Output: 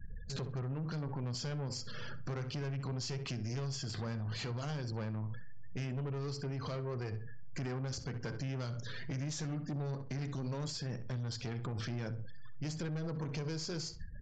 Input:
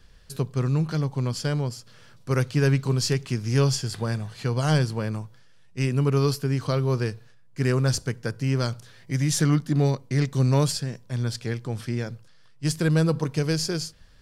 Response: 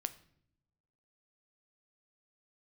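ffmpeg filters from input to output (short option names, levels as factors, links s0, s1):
-filter_complex "[0:a]aeval=exprs='if(lt(val(0),0),0.708*val(0),val(0))':c=same,acompressor=threshold=0.0158:ratio=6,flanger=delay=9:depth=5.6:regen=-74:speed=0.17:shape=triangular,afftfilt=real='re*gte(hypot(re,im),0.00141)':imag='im*gte(hypot(re,im),0.00141)':win_size=1024:overlap=0.75,aeval=exprs='(tanh(141*val(0)+0.3)-tanh(0.3))/141':c=same,aresample=16000,aresample=44100,asplit=2[s0][s1];[s1]adelay=65,lowpass=f=2800:p=1,volume=0.211,asplit=2[s2][s3];[s3]adelay=65,lowpass=f=2800:p=1,volume=0.26,asplit=2[s4][s5];[s5]adelay=65,lowpass=f=2800:p=1,volume=0.26[s6];[s2][s4][s6]amix=inputs=3:normalize=0[s7];[s0][s7]amix=inputs=2:normalize=0,alimiter=level_in=15:limit=0.0631:level=0:latency=1:release=59,volume=0.0668,volume=5.62"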